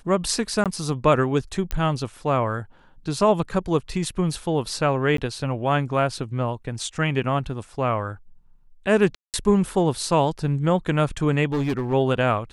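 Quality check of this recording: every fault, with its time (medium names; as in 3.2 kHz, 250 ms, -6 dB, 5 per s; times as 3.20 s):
0.64–0.66 s: dropout 17 ms
1.71 s: pop -11 dBFS
5.17–5.18 s: dropout 13 ms
9.15–9.34 s: dropout 188 ms
11.52–11.94 s: clipped -19.5 dBFS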